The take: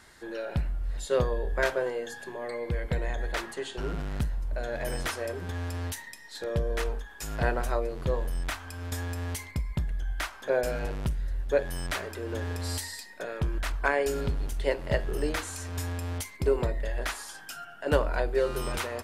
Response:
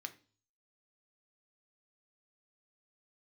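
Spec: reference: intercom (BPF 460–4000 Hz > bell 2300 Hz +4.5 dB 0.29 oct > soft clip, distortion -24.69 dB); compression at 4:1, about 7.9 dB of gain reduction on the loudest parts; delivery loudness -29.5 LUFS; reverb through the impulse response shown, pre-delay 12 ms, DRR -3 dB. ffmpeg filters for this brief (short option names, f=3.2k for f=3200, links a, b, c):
-filter_complex "[0:a]acompressor=threshold=-28dB:ratio=4,asplit=2[a][b];[1:a]atrim=start_sample=2205,adelay=12[c];[b][c]afir=irnorm=-1:irlink=0,volume=5.5dB[d];[a][d]amix=inputs=2:normalize=0,highpass=460,lowpass=4k,equalizer=f=2.3k:t=o:w=0.29:g=4.5,asoftclip=threshold=-18.5dB,volume=5.5dB"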